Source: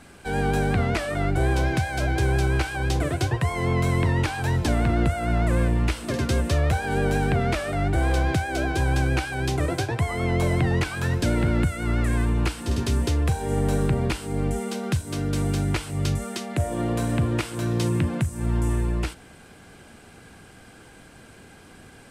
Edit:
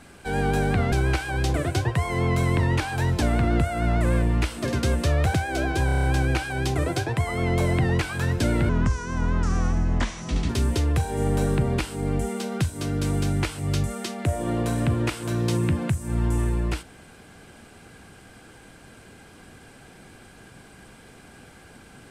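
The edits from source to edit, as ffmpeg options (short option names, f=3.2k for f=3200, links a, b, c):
-filter_complex "[0:a]asplit=11[a][b][c][d][e][f][g][h][i][j][k];[a]atrim=end=0.922[l];[b]atrim=start=2.378:end=6.802[m];[c]atrim=start=8.338:end=8.892[n];[d]atrim=start=8.858:end=8.892[o];[e]atrim=start=8.858:end=8.892[p];[f]atrim=start=8.858:end=8.892[q];[g]atrim=start=8.858:end=8.892[r];[h]atrim=start=8.858:end=8.892[s];[i]atrim=start=8.858:end=11.514[t];[j]atrim=start=11.51:end=12.81,asetpts=PTS-STARTPTS,asetrate=31752,aresample=44100[u];[k]atrim=start=12.806[v];[l][m]acrossfade=d=0.004:c1=hsin:c2=hsin[w];[w][n]acrossfade=d=0.004:c1=hsin:c2=hsin[x];[x][o]acrossfade=d=0.004:c1=hsin:c2=hsin[y];[y][p]acrossfade=d=0.004:c1=hsin:c2=hsin[z];[z][q]acrossfade=d=0.004:c1=hsin:c2=hsin[aa];[aa][r]acrossfade=d=0.004:c1=hsin:c2=hsin[ab];[ab][s]acrossfade=d=0.004:c1=hsin:c2=hsin[ac];[ac][t]acrossfade=d=0.004:c1=hsin:c2=hsin[ad];[ad][u]acrossfade=d=0.004:c1=hsin:c2=hsin[ae];[ae][v]acrossfade=d=0.004:c1=hsin:c2=hsin"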